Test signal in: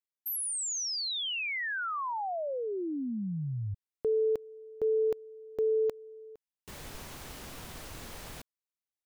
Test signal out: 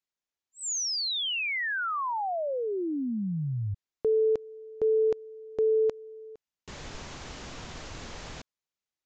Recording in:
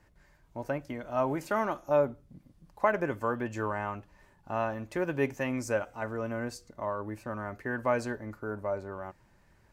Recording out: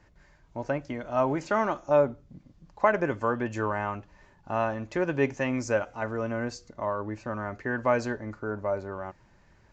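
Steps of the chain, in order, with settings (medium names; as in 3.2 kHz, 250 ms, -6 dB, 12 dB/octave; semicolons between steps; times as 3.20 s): resampled via 16 kHz; trim +3.5 dB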